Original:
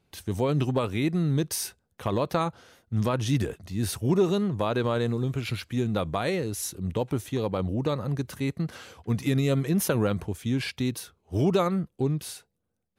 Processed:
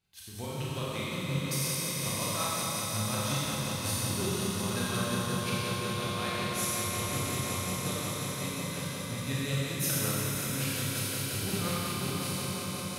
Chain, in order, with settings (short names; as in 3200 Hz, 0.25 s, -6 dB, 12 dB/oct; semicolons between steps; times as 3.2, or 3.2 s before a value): passive tone stack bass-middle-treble 5-5-5; swelling echo 88 ms, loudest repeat 8, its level -11 dB; tremolo triangle 5.5 Hz, depth 85%; Schroeder reverb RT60 3 s, combs from 29 ms, DRR -7 dB; gain +4.5 dB